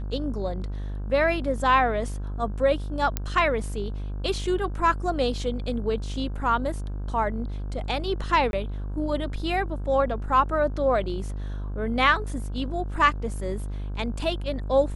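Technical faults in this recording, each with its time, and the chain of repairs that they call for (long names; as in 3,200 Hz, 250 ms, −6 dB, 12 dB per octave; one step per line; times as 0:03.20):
mains buzz 50 Hz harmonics 33 −31 dBFS
0:03.17: click −10 dBFS
0:08.51–0:08.53: drop-out 21 ms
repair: click removal
hum removal 50 Hz, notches 33
repair the gap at 0:08.51, 21 ms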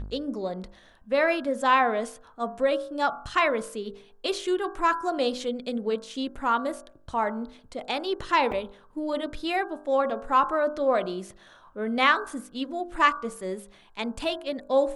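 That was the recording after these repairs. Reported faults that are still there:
none of them is left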